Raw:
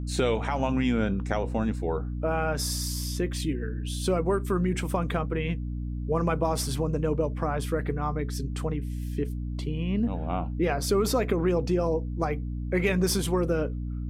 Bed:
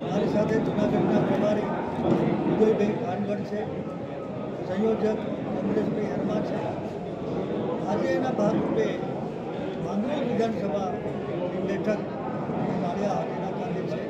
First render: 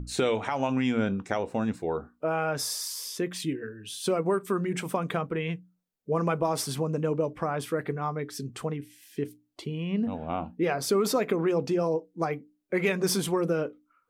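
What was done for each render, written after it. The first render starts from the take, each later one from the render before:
mains-hum notches 60/120/180/240/300 Hz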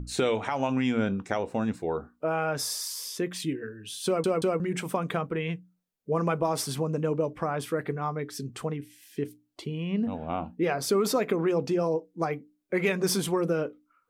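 0:04.06: stutter in place 0.18 s, 3 plays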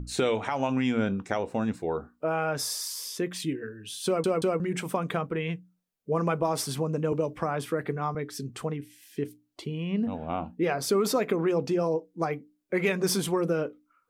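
0:07.12–0:08.15: multiband upward and downward compressor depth 40%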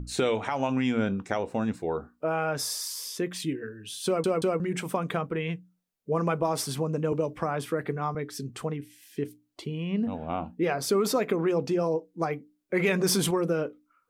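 0:12.76–0:13.31: envelope flattener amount 50%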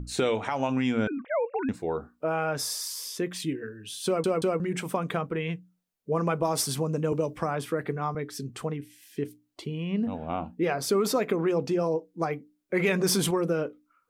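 0:01.07–0:01.69: three sine waves on the formant tracks
0:06.40–0:07.55: bass and treble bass +1 dB, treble +5 dB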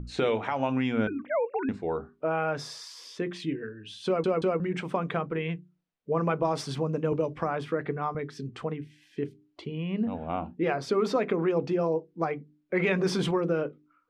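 low-pass filter 3,500 Hz 12 dB per octave
mains-hum notches 50/100/150/200/250/300/350/400 Hz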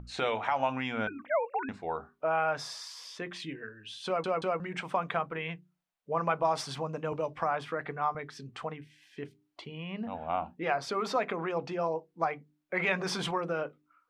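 low shelf with overshoot 540 Hz −8 dB, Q 1.5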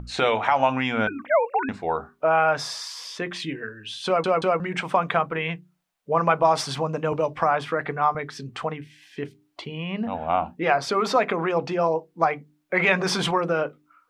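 level +9 dB

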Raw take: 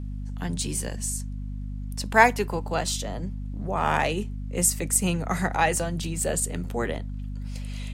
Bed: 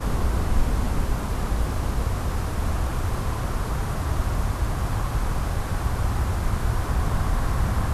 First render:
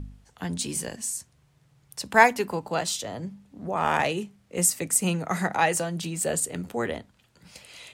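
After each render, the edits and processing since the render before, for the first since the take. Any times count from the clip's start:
hum removal 50 Hz, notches 5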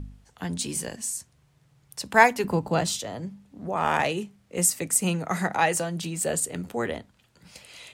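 0:02.44–0:02.99: low-shelf EQ 310 Hz +11.5 dB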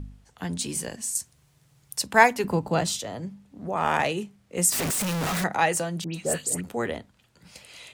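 0:01.15–0:02.06: high-shelf EQ 4,400 Hz +10 dB
0:04.72–0:05.44: sign of each sample alone
0:06.04–0:06.61: all-pass dispersion highs, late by 104 ms, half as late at 2,100 Hz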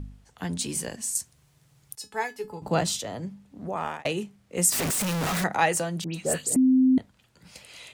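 0:01.95–0:02.62: tuned comb filter 430 Hz, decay 0.17 s, mix 90%
0:03.63–0:04.05: fade out
0:06.56–0:06.98: beep over 259 Hz −15.5 dBFS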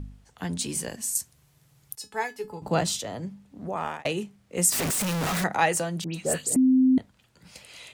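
0:00.88–0:01.99: parametric band 12,000 Hz +7.5 dB 0.21 octaves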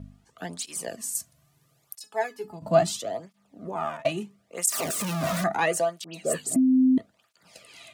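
hollow resonant body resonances 660/1,200 Hz, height 14 dB, ringing for 95 ms
through-zero flanger with one copy inverted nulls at 0.75 Hz, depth 2.6 ms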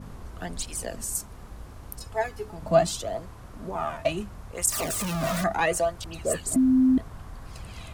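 mix in bed −18 dB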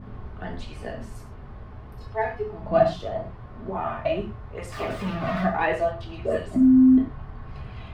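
high-frequency loss of the air 360 metres
reverb whose tail is shaped and stops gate 150 ms falling, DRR −1 dB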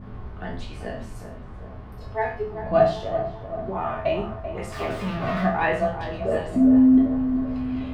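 peak hold with a decay on every bin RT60 0.31 s
tape delay 388 ms, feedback 70%, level −8 dB, low-pass 1,100 Hz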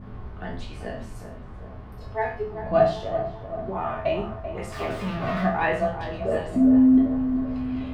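level −1 dB

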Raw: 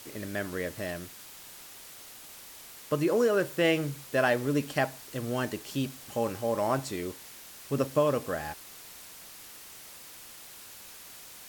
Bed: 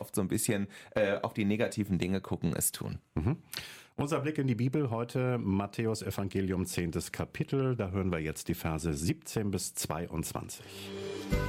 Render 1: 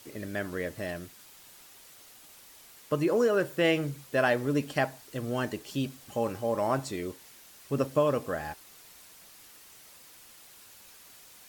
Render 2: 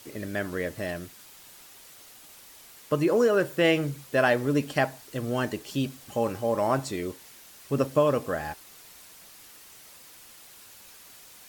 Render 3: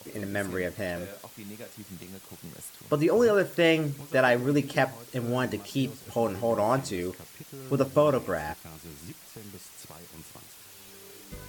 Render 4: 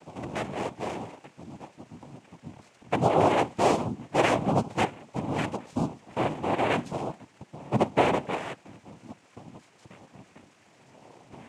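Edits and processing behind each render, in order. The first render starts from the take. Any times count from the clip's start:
broadband denoise 6 dB, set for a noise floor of −48 dBFS
level +3 dB
mix in bed −13.5 dB
running median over 15 samples; cochlear-implant simulation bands 4

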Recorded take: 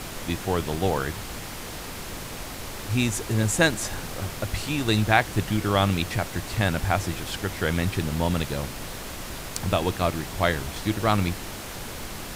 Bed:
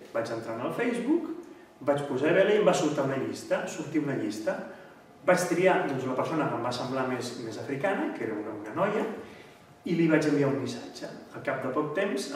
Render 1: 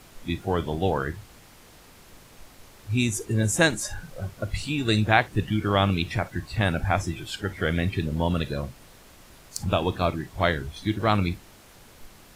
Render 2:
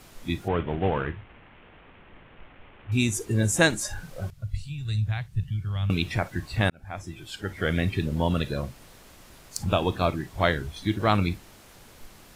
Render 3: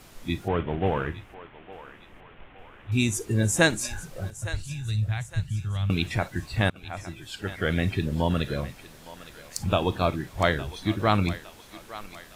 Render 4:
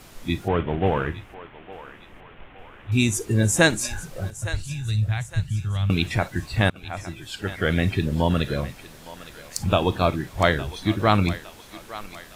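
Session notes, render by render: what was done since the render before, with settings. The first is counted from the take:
noise reduction from a noise print 15 dB
0:00.48–0:02.92: variable-slope delta modulation 16 kbit/s; 0:04.30–0:05.90: drawn EQ curve 140 Hz 0 dB, 280 Hz −27 dB, 3,800 Hz −13 dB; 0:06.70–0:07.76: fade in
feedback echo with a high-pass in the loop 861 ms, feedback 52%, high-pass 640 Hz, level −14 dB
level +3.5 dB; brickwall limiter −2 dBFS, peak gain reduction 1.5 dB

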